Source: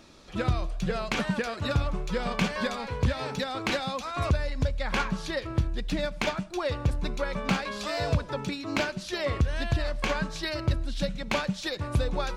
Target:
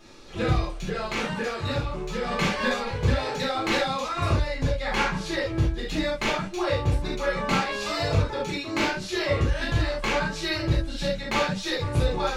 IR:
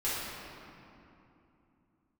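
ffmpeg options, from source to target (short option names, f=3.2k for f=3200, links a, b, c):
-filter_complex "[0:a]asettb=1/sr,asplit=3[a][b][c];[a]atrim=end=0.694[d];[b]atrim=start=0.69:end=2.28,asetpts=PTS-STARTPTS,afade=t=in:d=0.004:c=qsin,afade=t=out:st=1.586:d=0.004:c=qsin,acompressor=threshold=-29dB:ratio=2.5[e];[c]atrim=start=2.276[f];[d][e]acrossfade=d=0.004:c1=hsin:c2=qsin[g];[g][f]acrossfade=d=0.004:c1=qsin:c2=hsin[h];[1:a]atrim=start_sample=2205,atrim=end_sample=3969[i];[h][i]afir=irnorm=-1:irlink=0"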